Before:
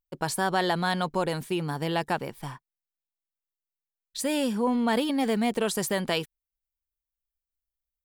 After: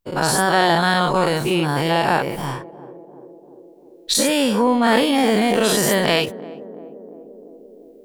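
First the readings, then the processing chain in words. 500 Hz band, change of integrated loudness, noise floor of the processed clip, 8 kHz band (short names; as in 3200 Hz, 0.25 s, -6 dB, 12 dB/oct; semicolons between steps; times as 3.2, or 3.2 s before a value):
+10.0 dB, +9.5 dB, -46 dBFS, +12.5 dB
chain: spectral dilation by 0.12 s; recorder AGC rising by 6.4 dB/s; high shelf 11000 Hz -4 dB; narrowing echo 0.344 s, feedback 79%, band-pass 370 Hz, level -16 dB; gain +5 dB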